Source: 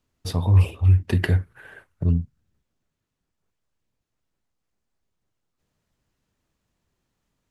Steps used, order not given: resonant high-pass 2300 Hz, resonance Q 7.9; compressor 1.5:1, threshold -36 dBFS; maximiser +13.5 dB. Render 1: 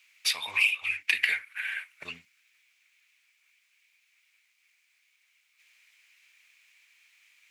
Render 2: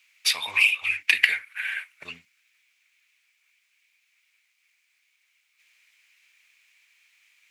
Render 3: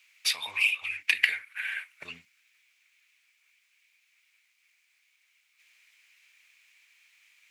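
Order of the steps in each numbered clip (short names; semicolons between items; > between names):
resonant high-pass > maximiser > compressor; resonant high-pass > compressor > maximiser; maximiser > resonant high-pass > compressor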